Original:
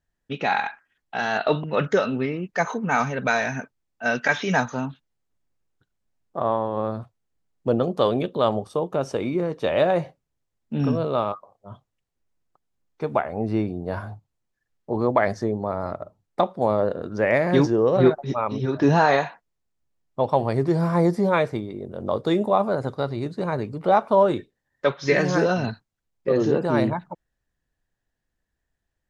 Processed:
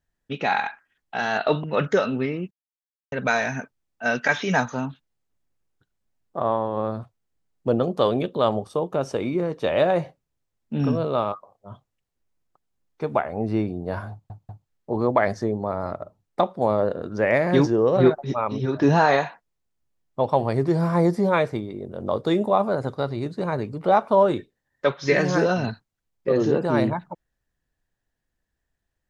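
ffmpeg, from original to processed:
-filter_complex "[0:a]asplit=6[a][b][c][d][e][f];[a]atrim=end=2.51,asetpts=PTS-STARTPTS,afade=t=out:st=2.506:d=0.004:c=hsin[g];[b]atrim=start=2.51:end=3.12,asetpts=PTS-STARTPTS,volume=0[h];[c]atrim=start=3.12:end=14.302,asetpts=PTS-STARTPTS,afade=t=in:d=0.004:c=hsin[i];[d]atrim=start=14.108:end=14.302[j];[e]atrim=start=14.108:end=14.302[k];[f]atrim=start=14.678[l];[g][h][i]concat=n=3:v=0:a=1[m];[m][j]acrossfade=d=0.004:c1=hsin:c2=hsin[n];[n][k]acrossfade=d=0.004:c1=hsin:c2=hsin[o];[o][l]acrossfade=d=0.004:c1=hsin:c2=hsin"

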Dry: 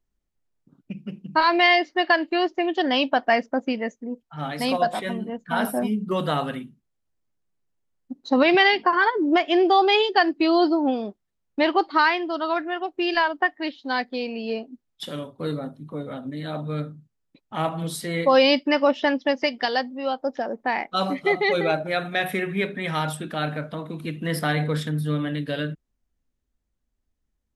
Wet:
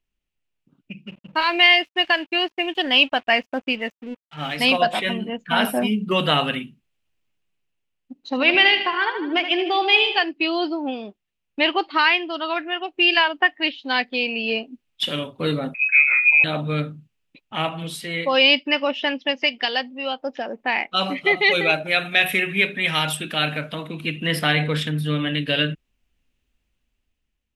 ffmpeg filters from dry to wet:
-filter_complex "[0:a]asettb=1/sr,asplit=3[a][b][c];[a]atrim=end=1.074[d];[b]atrim=start=1.07:end=4.57,asetpts=PTS-STARTPTS,afade=t=in:d=0.004:c=qsin,afade=t=out:st=3.496:d=0.004:c=qsin,aeval=exprs='sgn(val(0))*max(abs(val(0))-0.00501,0)':c=same[e];[c]atrim=start=4.566[f];[d][e]acrossfade=d=0.004:c1=hsin:c2=qsin[g];[g][f]acrossfade=d=0.004:c1=qsin:c2=hsin,asettb=1/sr,asplit=3[h][i][j];[h]atrim=end=8.154[k];[i]atrim=start=8.15:end=10.24,asetpts=PTS-STARTPTS,afade=t=in:d=0.004:c=qsin,afade=t=out:st=2.086:d=0.004:c=qsin,aecho=1:1:77|154|231|308|385|462:0.316|0.174|0.0957|0.0526|0.0289|0.0159,atrim=end_sample=92169[l];[j]atrim=start=10.236[m];[k][l]acrossfade=d=0.004:c1=hsin:c2=qsin[n];[n][m]acrossfade=d=0.004:c1=qsin:c2=hsin,asettb=1/sr,asplit=3[o][p][q];[o]atrim=end=15.744[r];[p]atrim=start=15.74:end=16.44,asetpts=PTS-STARTPTS,afade=t=in:d=0.004:c=qsin,afade=t=out:st=0.696:d=0.004:c=qsin,lowpass=f=2.3k:t=q:w=0.5098,lowpass=f=2.3k:t=q:w=0.6013,lowpass=f=2.3k:t=q:w=0.9,lowpass=f=2.3k:t=q:w=2.563,afreqshift=-2700[s];[q]atrim=start=16.436[t];[r][s]acrossfade=d=0.004:c1=hsin:c2=qsin[u];[u][t]acrossfade=d=0.004:c1=qsin:c2=hsin,asettb=1/sr,asplit=3[v][w][x];[v]atrim=end=21.374[y];[w]atrim=start=21.37:end=23.88,asetpts=PTS-STARTPTS,afade=t=in:d=0.004:c=qsin,afade=t=out:st=2.506:d=0.004:c=qsin,aemphasis=mode=production:type=cd[z];[x]atrim=start=23.876[aa];[y][z]acrossfade=d=0.004:c1=hsin:c2=qsin[ab];[ab][aa]acrossfade=d=0.004:c1=qsin:c2=hsin,equalizer=f=2.7k:w=1.8:g=15,dynaudnorm=f=220:g=9:m=11.5dB,volume=-3.5dB"

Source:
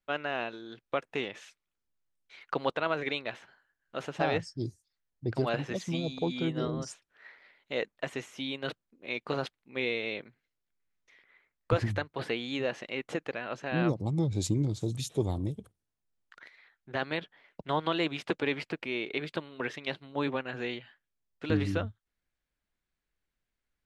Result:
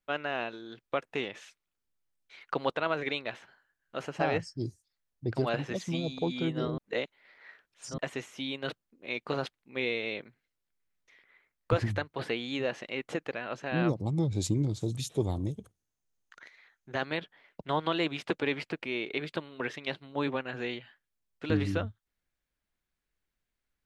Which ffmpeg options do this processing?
-filter_complex "[0:a]asettb=1/sr,asplit=3[a][b][c];[a]atrim=end=4.014[d];[b]atrim=start=4.01:end=4.67,asetpts=PTS-STARTPTS,afade=t=in:d=0.004:c=qsin,afade=t=out:st=0.656:d=0.004:c=qsin,bandreject=f=3.6k:w=6.4[e];[c]atrim=start=4.666[f];[d][e]acrossfade=d=0.004:c1=hsin:c2=qsin[g];[g][f]acrossfade=d=0.004:c1=qsin:c2=hsin,asettb=1/sr,asplit=3[h][i][j];[h]atrim=end=15.364[k];[i]atrim=start=15.36:end=17.05,asetpts=PTS-STARTPTS,afade=t=in:d=0.004:c=qsin,afade=t=out:st=1.686:d=0.004:c=qsin,equalizer=f=6.4k:t=o:w=0.21:g=10.5[l];[j]atrim=start=17.046[m];[k][l]acrossfade=d=0.004:c1=hsin:c2=qsin[n];[n][m]acrossfade=d=0.004:c1=qsin:c2=hsin,asplit=3[o][p][q];[o]atrim=end=6.782[r];[p]atrim=start=6.778:end=7.982,asetpts=PTS-STARTPTS,areverse[s];[q]atrim=start=7.978[t];[r][s]acrossfade=d=0.004:c1=hsin:c2=hsin[u];[u][t]acrossfade=d=0.004:c1=hsin:c2=hsin"

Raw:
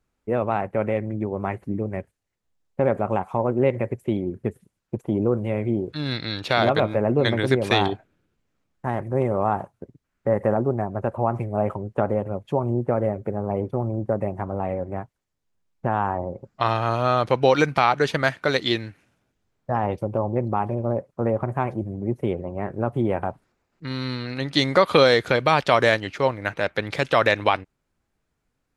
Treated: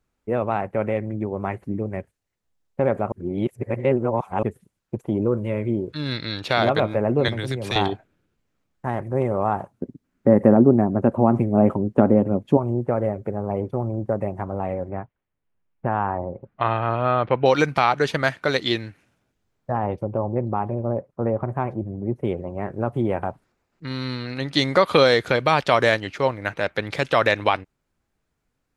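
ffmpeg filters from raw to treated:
-filter_complex "[0:a]asettb=1/sr,asplit=3[a][b][c];[a]atrim=end=5.214[d];[b]atrim=start=5.21:end=6.32,asetpts=PTS-STARTPTS,afade=t=in:d=0.004:c=qsin,afade=t=out:st=1.106:d=0.004:c=qsin,asuperstop=centerf=750:order=4:qfactor=5.3[e];[c]atrim=start=6.316[f];[d][e]acrossfade=d=0.004:c1=hsin:c2=qsin[g];[g][f]acrossfade=d=0.004:c1=qsin:c2=hsin,asettb=1/sr,asplit=3[h][i][j];[h]atrim=end=7.284[k];[i]atrim=start=7.28:end=7.76,asetpts=PTS-STARTPTS,afade=t=in:d=0.004:c=qsin,afade=t=out:st=0.476:d=0.004:c=qsin,acrossover=split=140|3000[l][m][n];[m]acompressor=threshold=-27dB:ratio=6:attack=3.2:release=140:knee=2.83:detection=peak[o];[l][o][n]amix=inputs=3:normalize=0[p];[j]atrim=start=7.756[q];[k][p]acrossfade=d=0.004:c1=hsin:c2=qsin[r];[r][q]acrossfade=d=0.004:c1=qsin:c2=hsin,asettb=1/sr,asplit=3[s][t][u];[s]atrim=end=9.714[v];[t]atrim=start=9.71:end=12.57,asetpts=PTS-STARTPTS,afade=t=in:d=0.004:c=qsin,afade=t=out:st=2.856:d=0.004:c=qsin,equalizer=f=250:w=1:g=14[w];[u]atrim=start=12.566[x];[v][w]acrossfade=d=0.004:c1=hsin:c2=qsin[y];[y][x]acrossfade=d=0.004:c1=qsin:c2=hsin,asettb=1/sr,asplit=3[z][aa][ab];[z]atrim=end=14.894[ac];[aa]atrim=start=14.89:end=17.46,asetpts=PTS-STARTPTS,afade=t=in:d=0.004:c=qsin,afade=t=out:st=2.566:d=0.004:c=qsin,lowpass=f=2.9k:w=0.5412,lowpass=f=2.9k:w=1.3066[ad];[ab]atrim=start=17.456[ae];[ac][ad]acrossfade=d=0.004:c1=hsin:c2=qsin[af];[af][ae]acrossfade=d=0.004:c1=qsin:c2=hsin,asettb=1/sr,asplit=3[ag][ah][ai];[ag]atrim=end=19.724[aj];[ah]atrim=start=19.72:end=22.25,asetpts=PTS-STARTPTS,afade=t=in:d=0.004:c=qsin,afade=t=out:st=2.526:d=0.004:c=qsin,highshelf=f=2.7k:g=-11[ak];[ai]atrim=start=22.246[al];[aj][ak]acrossfade=d=0.004:c1=hsin:c2=qsin[am];[am][al]acrossfade=d=0.004:c1=qsin:c2=hsin,asplit=3[an][ao][ap];[an]atrim=end=3.122[aq];[ao]atrim=start=3.118:end=4.432,asetpts=PTS-STARTPTS,areverse[ar];[ap]atrim=start=4.428[as];[aq][ar]acrossfade=d=0.004:c1=hsin:c2=hsin[at];[at][as]acrossfade=d=0.004:c1=hsin:c2=hsin"

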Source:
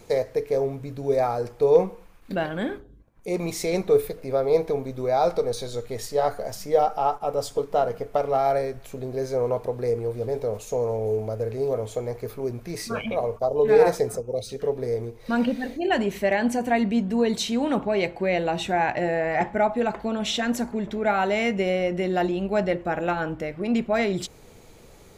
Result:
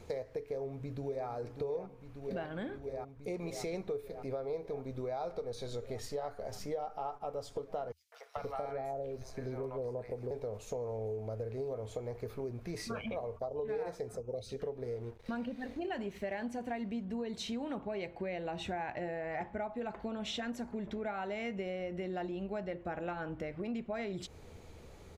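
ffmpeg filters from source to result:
-filter_complex "[0:a]asplit=2[a][b];[b]afade=t=in:st=0.46:d=0.01,afade=t=out:st=1.27:d=0.01,aecho=0:1:590|1180|1770|2360|2950|3540|4130|4720|5310|5900|6490|7080:0.354813|0.283851|0.227081|0.181664|0.145332|0.116265|0.0930122|0.0744098|0.0595278|0.0476222|0.0380978|0.0304782[c];[a][c]amix=inputs=2:normalize=0,asettb=1/sr,asplit=3[d][e][f];[d]atrim=end=7.924[g];[e]atrim=start=7.92:end=10.31,asetpts=PTS-STARTPTS,afade=t=in:d=0.004:c=qsin,afade=t=out:st=2.386:d=0.004:c=qsin,acrossover=split=810|4000[h][i][j];[i]adelay=200[k];[h]adelay=440[l];[l][k][j]amix=inputs=3:normalize=0,atrim=end_sample=105399[m];[f]atrim=start=10.306[n];[g][m]acrossfade=d=0.004:c1=hsin:c2=qsin[o];[o][n]acrossfade=d=0.004:c1=qsin:c2=hsin,asettb=1/sr,asplit=3[p][q][r];[p]atrim=end=14.844[s];[q]atrim=start=14.84:end=17.05,asetpts=PTS-STARTPTS,afade=t=in:d=0.004:c=qsin,afade=t=out:st=2.206:d=0.004:c=qsin,aeval=exprs='sgn(val(0))*max(abs(val(0))-0.00355,0)':c=same[t];[r]atrim=start=17.046[u];[s][t]acrossfade=d=0.004:c1=hsin:c2=qsin[v];[v][u]acrossfade=d=0.004:c1=qsin:c2=hsin,highshelf=f=7.4k:g=-11,acompressor=threshold=-32dB:ratio=5,equalizer=f=80:w=3.6:g=11,volume=-4.5dB"

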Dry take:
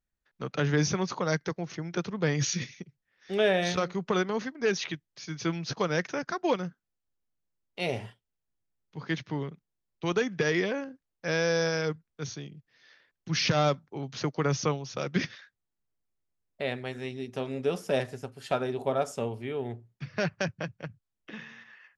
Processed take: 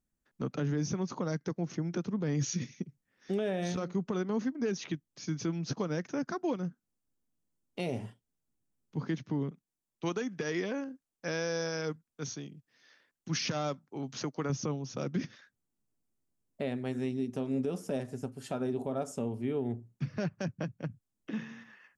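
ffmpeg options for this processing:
-filter_complex "[0:a]asettb=1/sr,asplit=3[a][b][c];[a]atrim=end=9.514[d];[b]atrim=start=9.51:end=14.5,asetpts=PTS-STARTPTS,afade=t=in:d=0.004:c=qsin,afade=t=out:st=4.986:d=0.004:c=qsin,lowshelf=f=460:g=-10.5[e];[c]atrim=start=14.496[f];[d][e]acrossfade=d=0.004:c1=hsin:c2=qsin[g];[g][f]acrossfade=d=0.004:c1=qsin:c2=hsin,equalizer=f=125:t=o:w=1:g=3,equalizer=f=250:t=o:w=1:g=10,equalizer=f=2k:t=o:w=1:g=-4,equalizer=f=4k:t=o:w=1:g=-5,equalizer=f=8k:t=o:w=1:g=5,alimiter=limit=-23.5dB:level=0:latency=1:release=398"

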